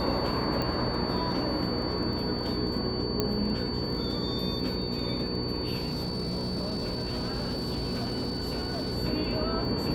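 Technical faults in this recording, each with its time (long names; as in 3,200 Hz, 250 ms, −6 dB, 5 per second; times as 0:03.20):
surface crackle 16 per second −37 dBFS
mains hum 60 Hz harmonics 8 −34 dBFS
whistle 4,500 Hz −36 dBFS
0:00.62: click −18 dBFS
0:03.20: click −12 dBFS
0:05.78–0:08.98: clipping −27 dBFS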